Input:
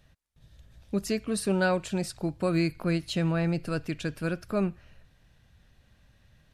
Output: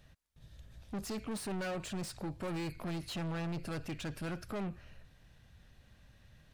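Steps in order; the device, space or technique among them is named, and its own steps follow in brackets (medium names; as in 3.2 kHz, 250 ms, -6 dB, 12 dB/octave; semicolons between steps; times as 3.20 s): saturation between pre-emphasis and de-emphasis (treble shelf 4.3 kHz +8.5 dB; saturation -35.5 dBFS, distortion -4 dB; treble shelf 4.3 kHz -8.5 dB)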